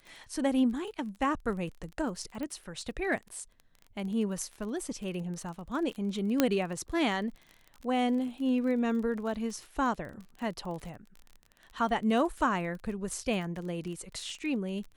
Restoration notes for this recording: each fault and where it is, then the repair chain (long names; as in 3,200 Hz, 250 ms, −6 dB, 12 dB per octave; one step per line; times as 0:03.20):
surface crackle 29 per second −38 dBFS
0:02.43: click −25 dBFS
0:06.40: click −9 dBFS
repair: click removal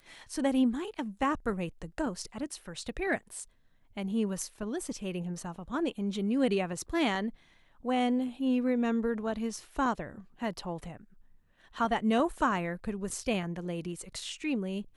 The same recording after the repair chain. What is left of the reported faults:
none of them is left